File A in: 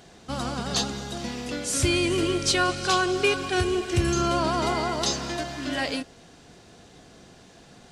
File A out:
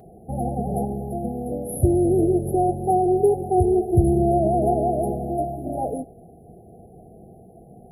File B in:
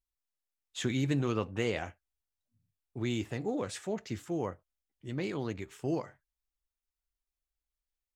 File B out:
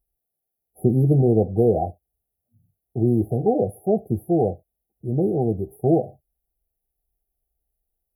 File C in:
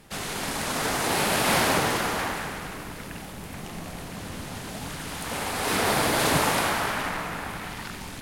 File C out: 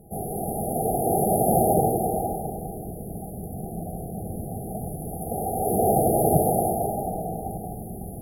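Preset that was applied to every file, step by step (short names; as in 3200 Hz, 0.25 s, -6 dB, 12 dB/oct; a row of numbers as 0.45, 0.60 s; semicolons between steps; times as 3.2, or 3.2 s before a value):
brick-wall FIR band-stop 840–9900 Hz; dynamic EQ 1000 Hz, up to +5 dB, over -47 dBFS, Q 1.5; notch comb 280 Hz; normalise peaks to -6 dBFS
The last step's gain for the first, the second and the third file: +6.5, +14.5, +6.0 dB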